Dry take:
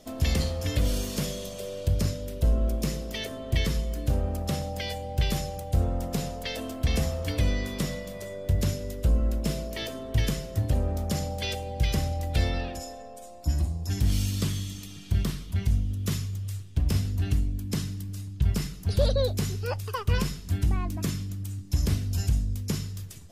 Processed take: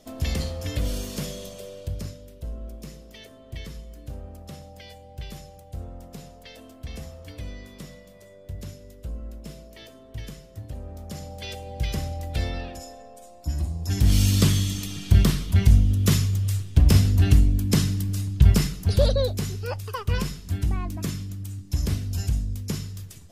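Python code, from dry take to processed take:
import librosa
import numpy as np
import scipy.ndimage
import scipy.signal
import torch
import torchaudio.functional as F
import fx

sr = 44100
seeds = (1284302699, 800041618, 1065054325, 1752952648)

y = fx.gain(x, sr, db=fx.line((1.47, -1.5), (2.39, -11.5), (10.76, -11.5), (11.75, -2.0), (13.51, -2.0), (14.33, 9.0), (18.48, 9.0), (19.4, 0.0)))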